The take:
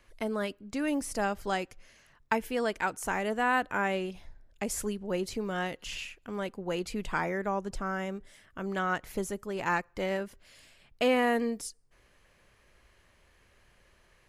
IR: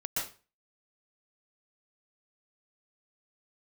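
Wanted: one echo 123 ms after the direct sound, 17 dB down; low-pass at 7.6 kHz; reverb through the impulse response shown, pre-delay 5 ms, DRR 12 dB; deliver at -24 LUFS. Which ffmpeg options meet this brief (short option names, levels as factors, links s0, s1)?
-filter_complex "[0:a]lowpass=7600,aecho=1:1:123:0.141,asplit=2[s0][s1];[1:a]atrim=start_sample=2205,adelay=5[s2];[s1][s2]afir=irnorm=-1:irlink=0,volume=0.15[s3];[s0][s3]amix=inputs=2:normalize=0,volume=2.51"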